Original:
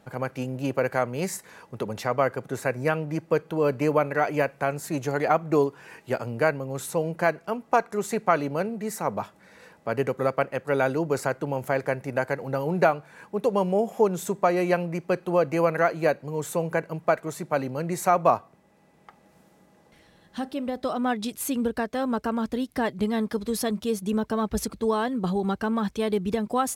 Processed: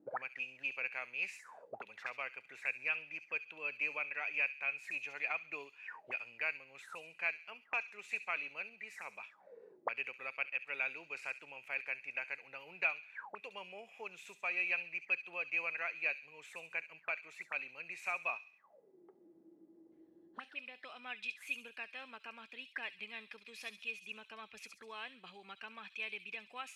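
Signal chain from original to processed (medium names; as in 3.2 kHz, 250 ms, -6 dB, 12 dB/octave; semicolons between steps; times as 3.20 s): feedback echo behind a high-pass 68 ms, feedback 45%, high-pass 4.3 kHz, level -4 dB; auto-wah 300–2500 Hz, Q 20, up, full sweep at -27.5 dBFS; trim +11 dB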